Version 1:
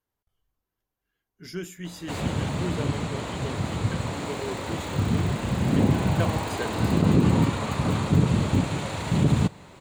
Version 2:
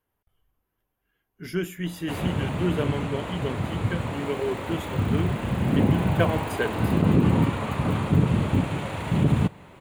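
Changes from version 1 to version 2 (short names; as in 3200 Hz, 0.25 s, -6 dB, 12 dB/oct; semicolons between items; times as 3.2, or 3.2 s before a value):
speech +6.5 dB; master: add band shelf 5600 Hz -9.5 dB 1.3 oct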